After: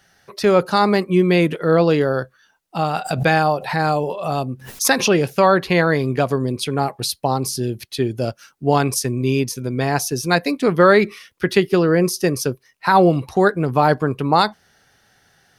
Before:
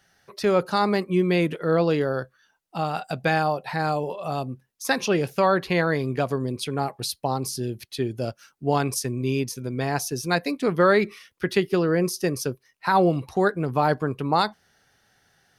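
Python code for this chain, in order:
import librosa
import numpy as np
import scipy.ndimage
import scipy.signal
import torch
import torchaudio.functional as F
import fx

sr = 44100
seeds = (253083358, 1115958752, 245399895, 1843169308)

y = fx.pre_swell(x, sr, db_per_s=100.0, at=(3.04, 5.09), fade=0.02)
y = y * 10.0 ** (6.0 / 20.0)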